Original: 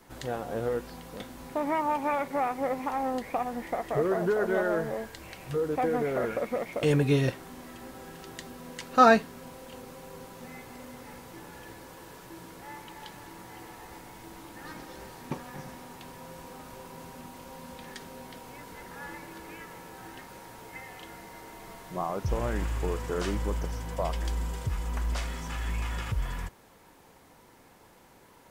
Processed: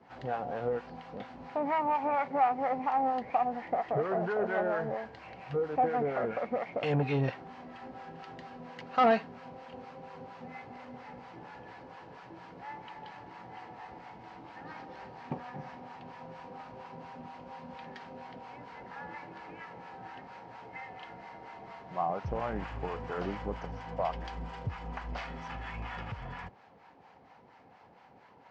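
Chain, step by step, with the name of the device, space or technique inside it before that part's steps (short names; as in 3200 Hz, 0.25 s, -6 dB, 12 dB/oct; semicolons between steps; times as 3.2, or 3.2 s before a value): guitar amplifier with harmonic tremolo (harmonic tremolo 4.3 Hz, depth 70%, crossover 700 Hz; soft clip -22 dBFS, distortion -13 dB; speaker cabinet 94–4100 Hz, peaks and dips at 340 Hz -5 dB, 770 Hz +8 dB, 3600 Hz -7 dB); gain +1 dB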